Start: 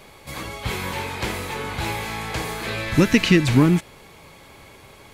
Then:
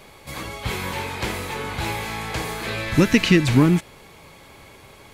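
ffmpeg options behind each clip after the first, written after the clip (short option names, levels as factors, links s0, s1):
-af anull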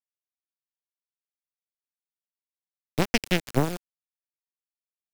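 -filter_complex "[0:a]aeval=exprs='0.891*(cos(1*acos(clip(val(0)/0.891,-1,1)))-cos(1*PI/2))+0.316*(cos(3*acos(clip(val(0)/0.891,-1,1)))-cos(3*PI/2))+0.0631*(cos(4*acos(clip(val(0)/0.891,-1,1)))-cos(4*PI/2))':c=same,acrusher=bits=6:dc=4:mix=0:aa=0.000001,acrossover=split=360|3000[s0][s1][s2];[s1]acompressor=threshold=0.0447:ratio=2[s3];[s0][s3][s2]amix=inputs=3:normalize=0"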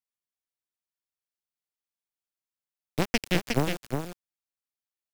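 -af "aecho=1:1:360:0.562,volume=0.75"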